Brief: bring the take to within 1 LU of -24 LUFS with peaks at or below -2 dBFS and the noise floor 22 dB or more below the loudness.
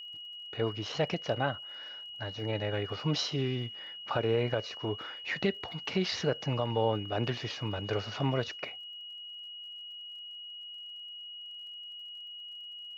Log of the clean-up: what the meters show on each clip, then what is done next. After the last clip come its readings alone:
tick rate 40 per s; steady tone 2.9 kHz; tone level -42 dBFS; loudness -34.5 LUFS; peak level -16.0 dBFS; loudness target -24.0 LUFS
-> de-click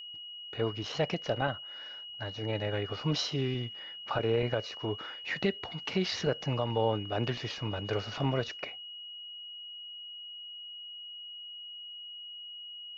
tick rate 0.15 per s; steady tone 2.9 kHz; tone level -42 dBFS
-> band-stop 2.9 kHz, Q 30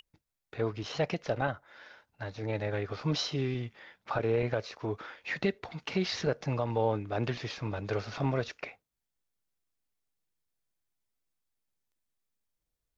steady tone not found; loudness -33.5 LUFS; peak level -16.0 dBFS; loudness target -24.0 LUFS
-> trim +9.5 dB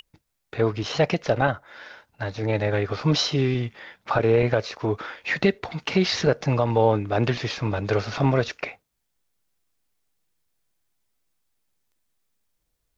loudness -24.0 LUFS; peak level -6.5 dBFS; noise floor -76 dBFS

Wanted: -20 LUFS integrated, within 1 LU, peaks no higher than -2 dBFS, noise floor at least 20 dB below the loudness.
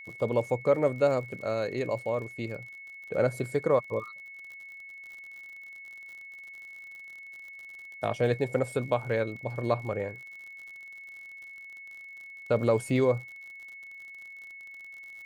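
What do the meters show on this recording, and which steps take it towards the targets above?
tick rate 58 per s; steady tone 2.2 kHz; tone level -43 dBFS; loudness -29.0 LUFS; peak level -12.0 dBFS; loudness target -20.0 LUFS
-> de-click; band-stop 2.2 kHz, Q 30; trim +9 dB

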